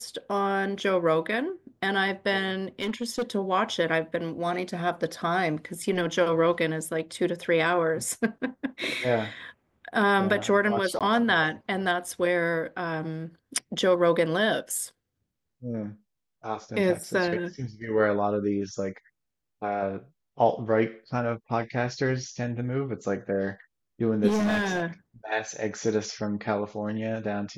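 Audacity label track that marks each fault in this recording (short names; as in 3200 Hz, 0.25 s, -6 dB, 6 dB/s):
2.800000	3.230000	clipped -23.5 dBFS
10.990000	11.010000	gap 17 ms
24.270000	24.830000	clipped -21.5 dBFS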